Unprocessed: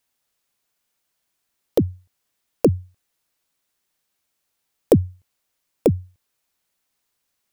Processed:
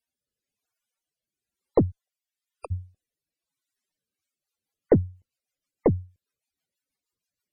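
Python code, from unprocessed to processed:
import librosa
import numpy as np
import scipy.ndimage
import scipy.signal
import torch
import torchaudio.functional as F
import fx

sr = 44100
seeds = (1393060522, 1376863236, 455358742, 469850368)

y = fx.highpass(x, sr, hz=fx.line((1.9, 420.0), (2.7, 990.0)), slope=24, at=(1.9, 2.7), fade=0.02)
y = fx.cheby_harmonics(y, sr, harmonics=(3, 6), levels_db=(-25, -23), full_scale_db=-1.5)
y = fx.rotary_switch(y, sr, hz=1.0, then_hz=6.3, switch_at_s=3.83)
y = fx.spec_topn(y, sr, count=64)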